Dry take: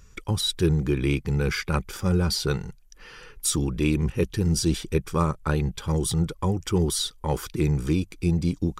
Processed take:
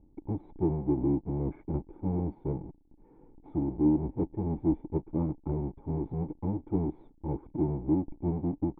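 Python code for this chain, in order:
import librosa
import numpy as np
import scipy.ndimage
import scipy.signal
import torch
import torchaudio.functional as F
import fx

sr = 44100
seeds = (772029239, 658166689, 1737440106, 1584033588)

y = fx.halfwave_hold(x, sr)
y = fx.formant_cascade(y, sr, vowel='u')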